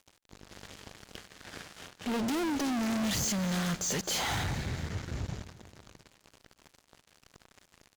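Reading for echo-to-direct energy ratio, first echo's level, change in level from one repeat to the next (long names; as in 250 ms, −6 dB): −15.5 dB, −17.0 dB, −5.0 dB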